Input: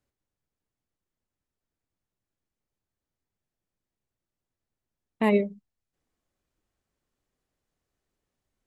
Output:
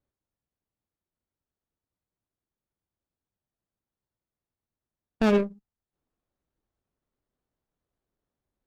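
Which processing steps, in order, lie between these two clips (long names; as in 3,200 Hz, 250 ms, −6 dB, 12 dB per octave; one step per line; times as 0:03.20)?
harmonic generator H 6 −21 dB, 7 −29 dB, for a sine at −10.5 dBFS
windowed peak hold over 17 samples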